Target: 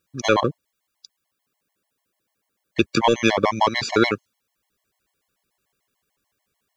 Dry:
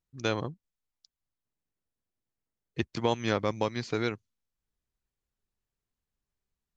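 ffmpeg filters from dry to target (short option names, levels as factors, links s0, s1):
-filter_complex "[0:a]highpass=f=430:p=1,equalizer=f=5900:w=0.83:g=-3,asplit=2[s0][s1];[s1]aeval=exprs='clip(val(0),-1,0.0316)':c=same,volume=0.398[s2];[s0][s2]amix=inputs=2:normalize=0,alimiter=level_in=8.41:limit=0.891:release=50:level=0:latency=1,afftfilt=real='re*gt(sin(2*PI*6.8*pts/sr)*(1-2*mod(floor(b*sr/1024/560),2)),0)':imag='im*gt(sin(2*PI*6.8*pts/sr)*(1-2*mod(floor(b*sr/1024/560),2)),0)':win_size=1024:overlap=0.75"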